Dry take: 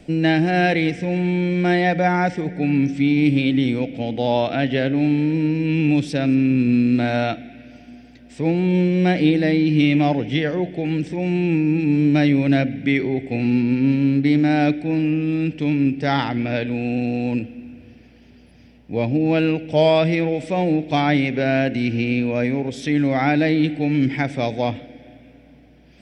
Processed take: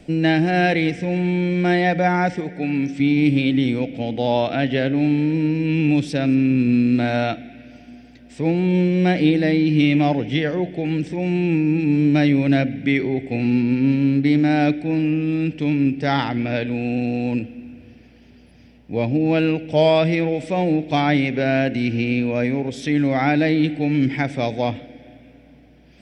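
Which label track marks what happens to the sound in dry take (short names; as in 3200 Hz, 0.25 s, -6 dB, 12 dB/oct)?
2.400000	3.000000	low shelf 200 Hz -9 dB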